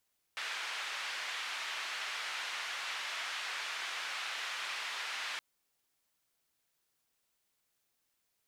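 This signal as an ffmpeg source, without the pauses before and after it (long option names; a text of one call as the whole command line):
ffmpeg -f lavfi -i "anoisesrc=color=white:duration=5.02:sample_rate=44100:seed=1,highpass=frequency=1200,lowpass=frequency=2800,volume=-23.8dB" out.wav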